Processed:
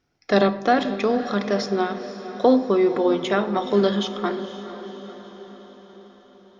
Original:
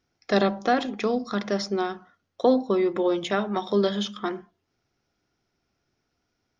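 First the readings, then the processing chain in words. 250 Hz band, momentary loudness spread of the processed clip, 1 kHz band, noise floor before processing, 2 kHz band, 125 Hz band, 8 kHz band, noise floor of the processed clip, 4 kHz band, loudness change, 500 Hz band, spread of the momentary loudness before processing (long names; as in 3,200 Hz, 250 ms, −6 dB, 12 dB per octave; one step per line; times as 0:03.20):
+4.0 dB, 17 LU, +4.0 dB, −77 dBFS, +3.5 dB, +4.0 dB, can't be measured, −52 dBFS, +2.5 dB, +3.5 dB, +4.0 dB, 9 LU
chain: high-shelf EQ 5,900 Hz −6.5 dB
feedback delay with all-pass diffusion 493 ms, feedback 57%, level −12.5 dB
rectangular room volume 590 cubic metres, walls mixed, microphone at 0.32 metres
level +3.5 dB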